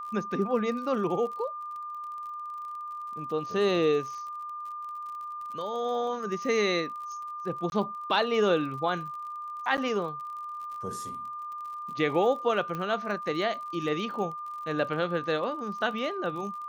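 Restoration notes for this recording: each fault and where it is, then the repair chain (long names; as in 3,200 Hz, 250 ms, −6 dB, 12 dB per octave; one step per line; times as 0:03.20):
surface crackle 41 per second −39 dBFS
whistle 1,200 Hz −35 dBFS
0:07.70–0:07.72: drop-out 21 ms
0:09.77–0:09.78: drop-out 8.7 ms
0:12.75: click −22 dBFS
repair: click removal
notch filter 1,200 Hz, Q 30
repair the gap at 0:07.70, 21 ms
repair the gap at 0:09.77, 8.7 ms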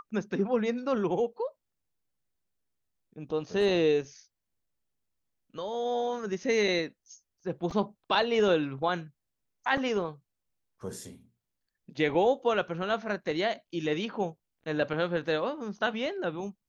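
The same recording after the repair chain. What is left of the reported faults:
none of them is left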